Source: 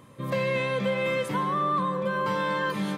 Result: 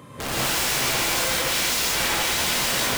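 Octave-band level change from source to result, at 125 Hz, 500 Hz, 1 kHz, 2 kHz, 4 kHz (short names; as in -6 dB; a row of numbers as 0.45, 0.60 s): -2.0, -3.5, -1.0, +6.5, +16.5 dB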